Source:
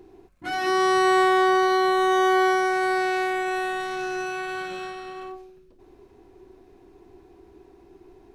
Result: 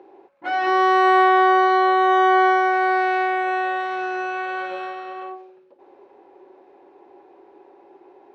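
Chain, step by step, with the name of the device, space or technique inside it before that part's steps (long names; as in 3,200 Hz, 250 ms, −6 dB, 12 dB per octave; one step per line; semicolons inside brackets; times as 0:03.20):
tin-can telephone (band-pass filter 430–2,600 Hz; hollow resonant body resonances 560/830 Hz, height 15 dB, ringing for 55 ms)
level +4 dB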